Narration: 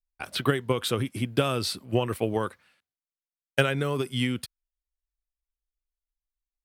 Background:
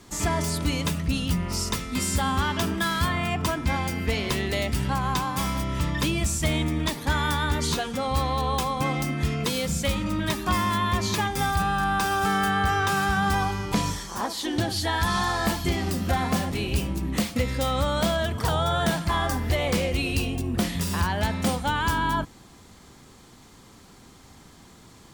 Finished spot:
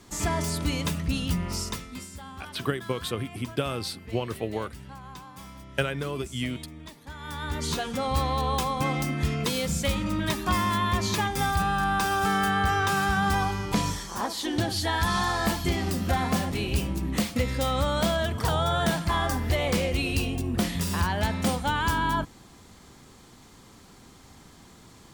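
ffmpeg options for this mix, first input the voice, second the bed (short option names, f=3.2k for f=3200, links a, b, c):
-filter_complex "[0:a]adelay=2200,volume=-4dB[a];[1:a]volume=14.5dB,afade=t=out:st=1.48:d=0.61:silence=0.16788,afade=t=in:st=7.18:d=0.74:silence=0.149624[b];[a][b]amix=inputs=2:normalize=0"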